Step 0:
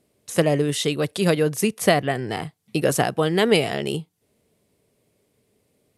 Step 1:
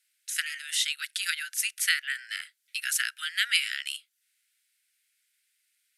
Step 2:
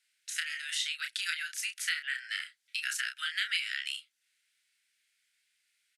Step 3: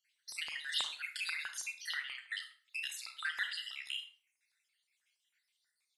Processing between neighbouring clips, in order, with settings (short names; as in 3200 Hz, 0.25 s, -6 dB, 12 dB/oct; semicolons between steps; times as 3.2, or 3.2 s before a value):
steep high-pass 1400 Hz 96 dB/oct
compressor 2.5:1, threshold -32 dBFS, peak gain reduction 9.5 dB; air absorption 51 m; doubler 31 ms -6 dB; gain +1 dB
random spectral dropouts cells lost 54%; LFO high-pass saw up 6.2 Hz 990–4800 Hz; on a send at -7 dB: reverb RT60 0.45 s, pre-delay 28 ms; on the sum: gain -5 dB